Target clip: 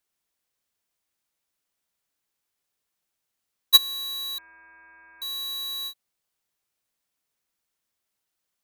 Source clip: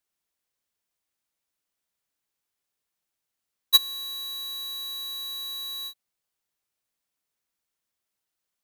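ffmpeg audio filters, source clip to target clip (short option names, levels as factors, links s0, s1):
-filter_complex "[0:a]asettb=1/sr,asplit=3[s0][s1][s2];[s0]atrim=end=4.384[s3];[s1]atrim=start=4.38:end=5.22,asetpts=PTS-STARTPTS,afade=t=in:d=0.004:c=qsin,afade=t=out:st=0.836:d=0.004:c=qsin,lowpass=f=2300:t=q:w=0.5098,lowpass=f=2300:t=q:w=0.6013,lowpass=f=2300:t=q:w=0.9,lowpass=f=2300:t=q:w=2.563,afreqshift=-2700[s4];[s2]atrim=start=5.216[s5];[s3][s4]acrossfade=d=0.004:c1=hsin:c2=qsin[s6];[s6][s5]acrossfade=d=0.004:c1=qsin:c2=hsin,volume=1.33"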